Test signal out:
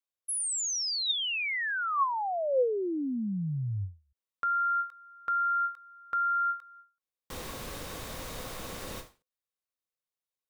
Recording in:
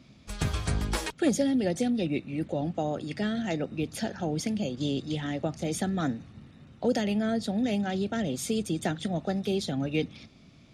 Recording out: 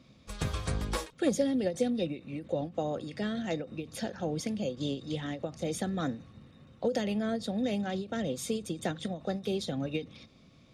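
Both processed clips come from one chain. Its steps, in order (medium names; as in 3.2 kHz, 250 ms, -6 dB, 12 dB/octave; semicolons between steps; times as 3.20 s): small resonant body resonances 510/1100/3700 Hz, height 9 dB, ringing for 45 ms; endings held to a fixed fall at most 200 dB/s; trim -4 dB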